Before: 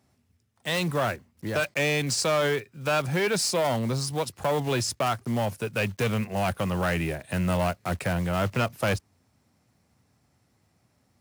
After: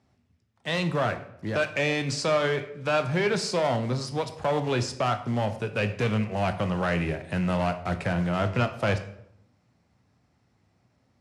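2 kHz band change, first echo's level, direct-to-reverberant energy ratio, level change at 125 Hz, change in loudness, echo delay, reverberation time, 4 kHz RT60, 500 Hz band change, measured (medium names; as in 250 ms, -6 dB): -0.5 dB, no echo, 9.0 dB, +0.5 dB, 0.0 dB, no echo, 0.70 s, 0.55 s, +0.5 dB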